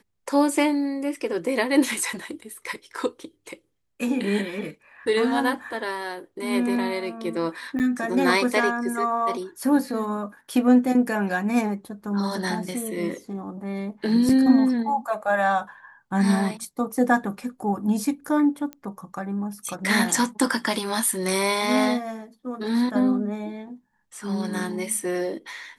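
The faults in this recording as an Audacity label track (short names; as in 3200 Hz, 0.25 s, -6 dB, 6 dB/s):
7.790000	7.800000	gap 8.9 ms
14.290000	14.290000	gap 3.8 ms
18.730000	18.730000	pop -21 dBFS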